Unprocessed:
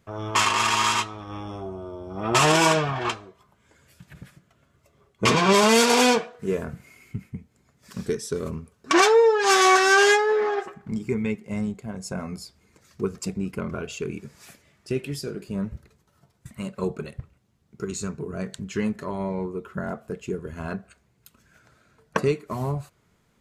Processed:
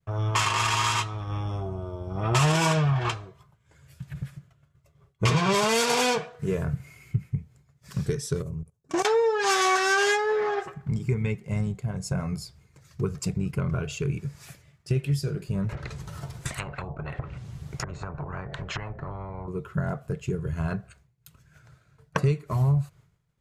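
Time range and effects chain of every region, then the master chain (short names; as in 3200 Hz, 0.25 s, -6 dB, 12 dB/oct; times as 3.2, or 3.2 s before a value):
8.42–9.05 band shelf 2300 Hz -10 dB 2.5 oct + level quantiser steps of 20 dB
15.69–19.48 treble ducked by the level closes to 410 Hz, closed at -27 dBFS + spectral compressor 10:1
whole clip: expander -55 dBFS; resonant low shelf 180 Hz +7 dB, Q 3; compressor 2:1, threshold -23 dBFS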